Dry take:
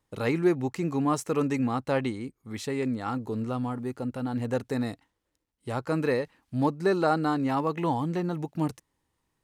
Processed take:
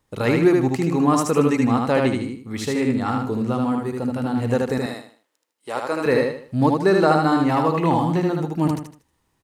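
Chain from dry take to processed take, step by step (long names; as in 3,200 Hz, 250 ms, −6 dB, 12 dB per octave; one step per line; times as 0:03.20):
0:04.78–0:06.06: high-pass filter 440 Hz 12 dB per octave
repeating echo 77 ms, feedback 33%, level −3 dB
level +6.5 dB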